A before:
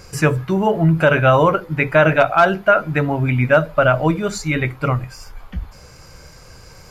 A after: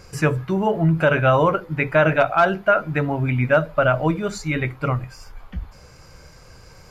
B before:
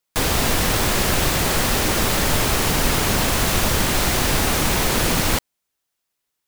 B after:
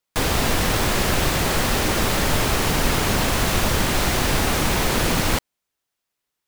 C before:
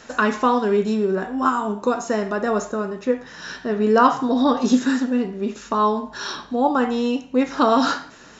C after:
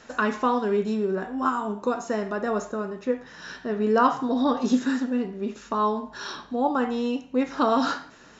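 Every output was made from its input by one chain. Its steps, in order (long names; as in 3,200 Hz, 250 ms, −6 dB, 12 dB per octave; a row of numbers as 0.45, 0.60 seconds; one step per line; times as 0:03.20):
high-shelf EQ 5,300 Hz −4.5 dB
normalise the peak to −6 dBFS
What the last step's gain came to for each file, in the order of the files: −3.0, −0.5, −5.0 decibels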